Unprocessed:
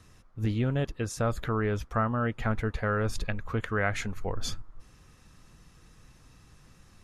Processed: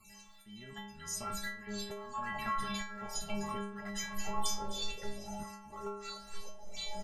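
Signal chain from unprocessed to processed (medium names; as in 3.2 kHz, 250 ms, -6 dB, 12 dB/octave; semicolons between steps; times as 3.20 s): random holes in the spectrogram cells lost 33%; in parallel at -5 dB: one-sided clip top -26 dBFS, bottom -18.5 dBFS; on the sum: bass shelf 320 Hz -7 dB; comb 1 ms, depth 71%; on a send at -22 dB: reverberation, pre-delay 51 ms; on the sum: ever faster or slower copies 91 ms, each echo -7 st, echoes 2, each echo -6 dB; tone controls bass -1 dB, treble +9 dB; delay 254 ms -18.5 dB; compression 4:1, threshold -30 dBFS, peak gain reduction 9 dB; slow attack 470 ms; inharmonic resonator 200 Hz, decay 0.81 s, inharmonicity 0.008; trim +16 dB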